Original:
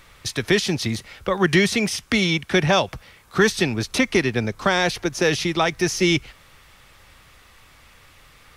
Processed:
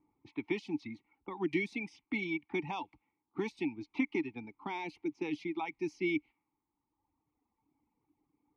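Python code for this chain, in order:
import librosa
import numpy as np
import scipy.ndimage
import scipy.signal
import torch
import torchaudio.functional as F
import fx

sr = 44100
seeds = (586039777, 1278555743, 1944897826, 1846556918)

y = fx.dereverb_blind(x, sr, rt60_s=1.8)
y = fx.env_lowpass(y, sr, base_hz=540.0, full_db=-19.0)
y = fx.vowel_filter(y, sr, vowel='u')
y = y * 10.0 ** (-2.5 / 20.0)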